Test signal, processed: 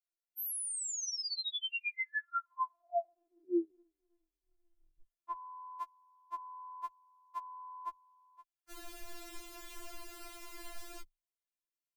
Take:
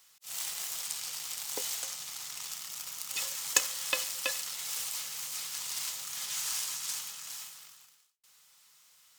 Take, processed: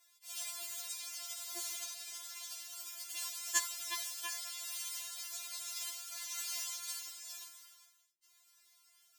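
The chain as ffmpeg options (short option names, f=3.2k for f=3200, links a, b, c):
-af "afreqshift=-21,afftfilt=real='re*4*eq(mod(b,16),0)':imag='im*4*eq(mod(b,16),0)':win_size=2048:overlap=0.75,volume=-3.5dB"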